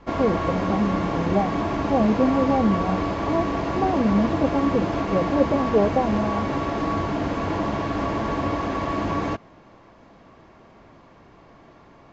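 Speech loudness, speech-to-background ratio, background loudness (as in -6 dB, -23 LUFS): -24.0 LUFS, 1.5 dB, -25.5 LUFS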